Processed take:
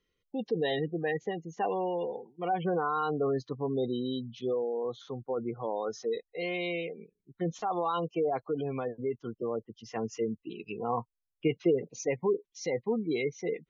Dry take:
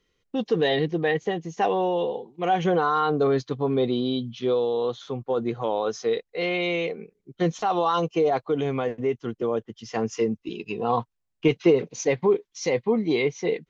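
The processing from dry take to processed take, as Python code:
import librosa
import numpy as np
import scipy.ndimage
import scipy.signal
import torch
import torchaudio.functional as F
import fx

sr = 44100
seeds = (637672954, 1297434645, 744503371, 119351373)

y = fx.spec_gate(x, sr, threshold_db=-25, keep='strong')
y = fx.env_phaser(y, sr, low_hz=450.0, high_hz=1300.0, full_db=-28.5, at=(6.8, 7.48), fade=0.02)
y = y * 10.0 ** (-7.5 / 20.0)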